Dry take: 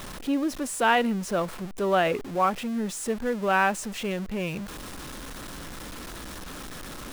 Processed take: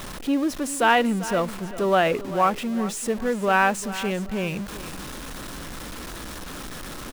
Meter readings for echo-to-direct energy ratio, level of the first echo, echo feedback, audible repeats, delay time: −14.5 dB, −15.0 dB, 29%, 2, 394 ms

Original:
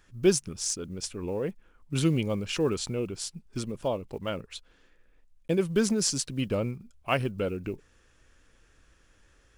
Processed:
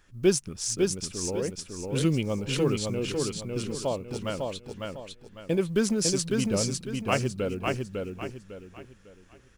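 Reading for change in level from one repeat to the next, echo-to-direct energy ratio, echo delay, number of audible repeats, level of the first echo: −9.5 dB, −3.0 dB, 552 ms, 4, −3.5 dB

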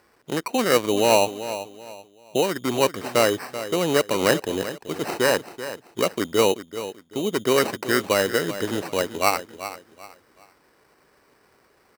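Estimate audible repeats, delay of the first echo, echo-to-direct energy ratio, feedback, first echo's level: 3, 384 ms, −12.0 dB, 30%, −12.5 dB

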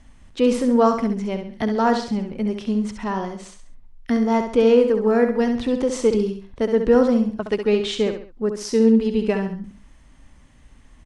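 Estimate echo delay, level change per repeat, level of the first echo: 67 ms, −8.0 dB, −7.5 dB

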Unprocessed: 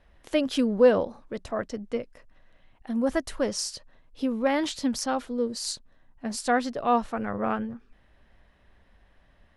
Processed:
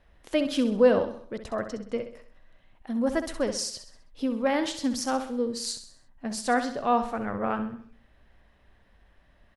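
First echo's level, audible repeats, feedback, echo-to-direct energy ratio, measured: −10.0 dB, 4, 46%, −9.0 dB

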